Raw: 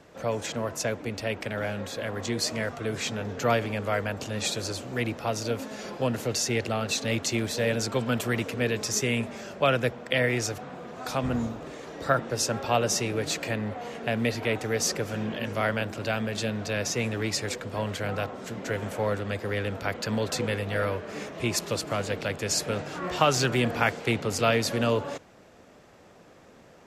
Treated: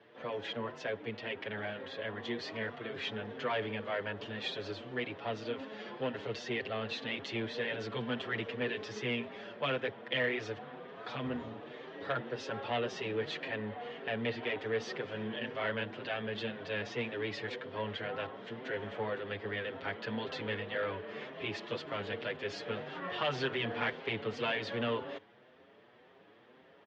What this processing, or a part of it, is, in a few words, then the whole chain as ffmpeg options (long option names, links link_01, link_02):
barber-pole flanger into a guitar amplifier: -filter_complex "[0:a]asplit=2[link_01][link_02];[link_02]adelay=6.7,afreqshift=1.9[link_03];[link_01][link_03]amix=inputs=2:normalize=1,asoftclip=type=tanh:threshold=-22.5dB,highpass=100,highpass=87,equalizer=frequency=170:width_type=q:width=4:gain=-4,equalizer=frequency=420:width_type=q:width=4:gain=5,equalizer=frequency=970:width_type=q:width=4:gain=3,equalizer=frequency=1800:width_type=q:width=4:gain=6,equalizer=frequency=3200:width_type=q:width=4:gain=8,lowpass=frequency=3900:width=0.5412,lowpass=frequency=3900:width=1.3066,volume=-5.5dB"